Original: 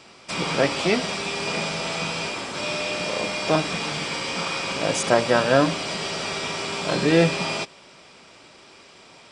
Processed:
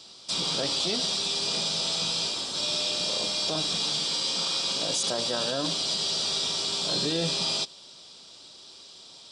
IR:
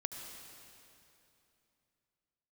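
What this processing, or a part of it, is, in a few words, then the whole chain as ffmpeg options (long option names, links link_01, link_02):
over-bright horn tweeter: -filter_complex "[0:a]highshelf=frequency=2900:width_type=q:width=3:gain=9,alimiter=limit=-10.5dB:level=0:latency=1:release=17,asettb=1/sr,asplit=3[link_01][link_02][link_03];[link_01]atrim=end=3.854[link_04];[link_02]atrim=start=3.85:end=5.79,asetpts=PTS-STARTPTS,afade=type=in:duration=0.004:curve=qsin,afade=type=out:start_time=1.936:duration=0.004:curve=qsin,highpass=120[link_05];[link_03]atrim=start=5.786[link_06];[link_04][link_05]acrossfade=duration=0.004:curve1=hsin:curve2=qsin[link_07];[link_07][link_06]acrossfade=duration=0.004:curve1=qsin:curve2=hsin,volume=-7.5dB"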